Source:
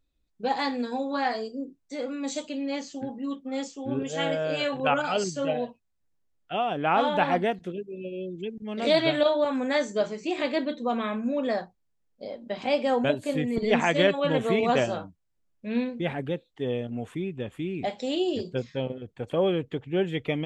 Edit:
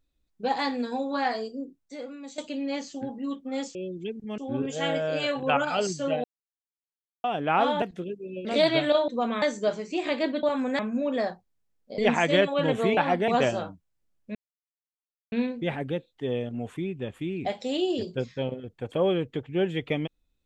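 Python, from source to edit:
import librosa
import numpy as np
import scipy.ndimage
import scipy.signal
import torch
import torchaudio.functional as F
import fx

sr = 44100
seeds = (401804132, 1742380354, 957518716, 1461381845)

y = fx.edit(x, sr, fx.fade_out_to(start_s=1.46, length_s=0.92, floor_db=-13.5),
    fx.silence(start_s=5.61, length_s=1.0),
    fx.move(start_s=7.19, length_s=0.31, to_s=14.63),
    fx.move(start_s=8.13, length_s=0.63, to_s=3.75),
    fx.swap(start_s=9.39, length_s=0.36, other_s=10.76, other_length_s=0.34),
    fx.cut(start_s=12.29, length_s=1.35),
    fx.insert_silence(at_s=15.7, length_s=0.97), tone=tone)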